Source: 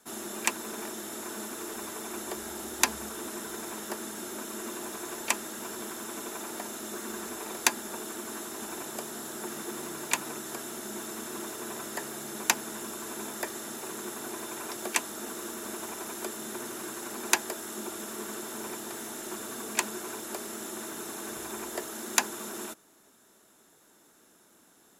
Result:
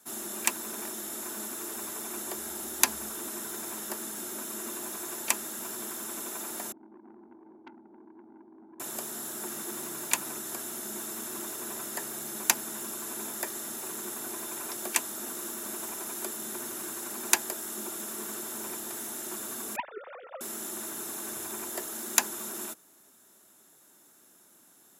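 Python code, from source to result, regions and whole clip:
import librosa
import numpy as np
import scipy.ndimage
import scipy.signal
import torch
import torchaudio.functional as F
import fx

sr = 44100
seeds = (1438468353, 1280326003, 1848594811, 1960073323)

y = fx.chain(x, sr, fx.formant_cascade(vowel='u'),
    fx.transformer_sat(knee_hz=1600.0), at=(6.72, 8.8))
y = fx.chain(y, sr, fx.sine_speech(),
    fx.clip_hard(threshold_db=-18.0),
    fx.air_absorb(metres=490.0), at=(19.76, 20.41))
y = scipy.signal.sosfilt(scipy.signal.butter(2, 64.0, 'highpass', fs=sr, output='sos'), y)
y = fx.high_shelf(y, sr, hz=9200.0, db=12.0)
y = fx.notch(y, sr, hz=460.0, q=12.0)
y = F.gain(torch.from_numpy(y), -2.5).numpy()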